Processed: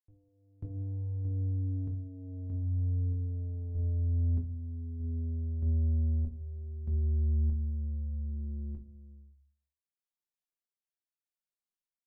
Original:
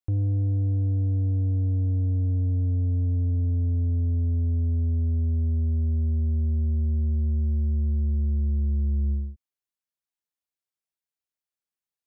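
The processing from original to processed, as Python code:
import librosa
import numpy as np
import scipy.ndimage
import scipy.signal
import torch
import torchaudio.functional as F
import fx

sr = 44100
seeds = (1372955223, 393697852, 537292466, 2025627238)

y = fx.median_filter(x, sr, points=41, at=(1.96, 2.94))
y = fx.tremolo_random(y, sr, seeds[0], hz=1.6, depth_pct=95)
y = fx.room_shoebox(y, sr, seeds[1], volume_m3=130.0, walls='furnished', distance_m=0.97)
y = y * librosa.db_to_amplitude(-6.5)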